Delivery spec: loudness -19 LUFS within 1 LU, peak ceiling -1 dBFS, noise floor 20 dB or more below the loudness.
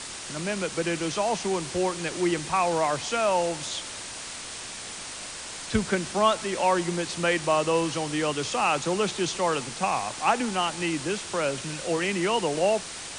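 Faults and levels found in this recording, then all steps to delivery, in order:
noise floor -38 dBFS; noise floor target -47 dBFS; loudness -27.0 LUFS; peak level -9.5 dBFS; loudness target -19.0 LUFS
-> noise print and reduce 9 dB; trim +8 dB

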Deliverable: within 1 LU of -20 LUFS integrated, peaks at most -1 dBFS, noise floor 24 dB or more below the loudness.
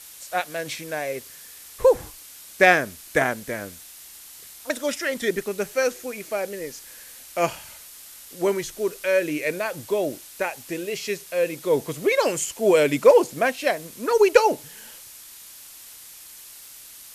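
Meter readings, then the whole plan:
noise floor -44 dBFS; noise floor target -47 dBFS; loudness -23.0 LUFS; peak level -2.5 dBFS; loudness target -20.0 LUFS
-> noise print and reduce 6 dB; trim +3 dB; peak limiter -1 dBFS

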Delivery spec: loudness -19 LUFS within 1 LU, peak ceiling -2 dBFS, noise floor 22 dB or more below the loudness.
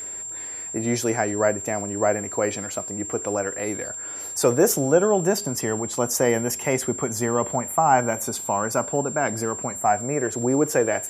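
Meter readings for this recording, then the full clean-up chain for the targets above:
tick rate 20 per s; steady tone 7.4 kHz; tone level -31 dBFS; loudness -23.5 LUFS; peak level -4.5 dBFS; loudness target -19.0 LUFS
-> de-click; band-stop 7.4 kHz, Q 30; trim +4.5 dB; peak limiter -2 dBFS

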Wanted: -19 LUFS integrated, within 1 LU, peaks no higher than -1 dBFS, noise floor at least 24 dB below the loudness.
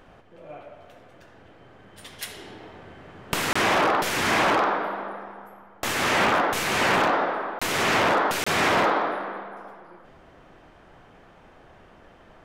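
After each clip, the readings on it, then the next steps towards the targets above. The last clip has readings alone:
dropouts 3; longest dropout 25 ms; loudness -22.5 LUFS; peak level -11.0 dBFS; loudness target -19.0 LUFS
-> interpolate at 3.53/7.59/8.44 s, 25 ms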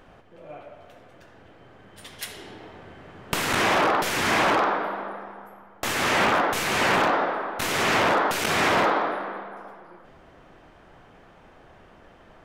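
dropouts 0; loudness -22.5 LUFS; peak level -8.5 dBFS; loudness target -19.0 LUFS
-> trim +3.5 dB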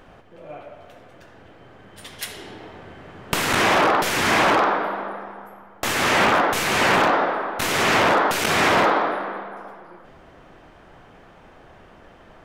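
loudness -19.0 LUFS; peak level -5.0 dBFS; noise floor -49 dBFS

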